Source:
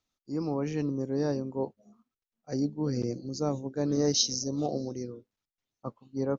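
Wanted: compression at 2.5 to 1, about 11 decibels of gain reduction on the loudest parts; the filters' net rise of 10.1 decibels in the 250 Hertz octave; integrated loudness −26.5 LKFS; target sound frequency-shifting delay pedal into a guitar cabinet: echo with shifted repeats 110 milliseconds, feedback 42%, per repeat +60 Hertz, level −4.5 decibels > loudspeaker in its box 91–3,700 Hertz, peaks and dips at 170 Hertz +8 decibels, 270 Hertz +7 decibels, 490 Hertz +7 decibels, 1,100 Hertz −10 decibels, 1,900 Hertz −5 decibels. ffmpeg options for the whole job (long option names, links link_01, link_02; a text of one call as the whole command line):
ffmpeg -i in.wav -filter_complex "[0:a]equalizer=frequency=250:width_type=o:gain=4.5,acompressor=threshold=-37dB:ratio=2.5,asplit=6[link_01][link_02][link_03][link_04][link_05][link_06];[link_02]adelay=110,afreqshift=60,volume=-4.5dB[link_07];[link_03]adelay=220,afreqshift=120,volume=-12dB[link_08];[link_04]adelay=330,afreqshift=180,volume=-19.6dB[link_09];[link_05]adelay=440,afreqshift=240,volume=-27.1dB[link_10];[link_06]adelay=550,afreqshift=300,volume=-34.6dB[link_11];[link_01][link_07][link_08][link_09][link_10][link_11]amix=inputs=6:normalize=0,highpass=91,equalizer=frequency=170:width_type=q:width=4:gain=8,equalizer=frequency=270:width_type=q:width=4:gain=7,equalizer=frequency=490:width_type=q:width=4:gain=7,equalizer=frequency=1100:width_type=q:width=4:gain=-10,equalizer=frequency=1900:width_type=q:width=4:gain=-5,lowpass=frequency=3700:width=0.5412,lowpass=frequency=3700:width=1.3066,volume=5.5dB" out.wav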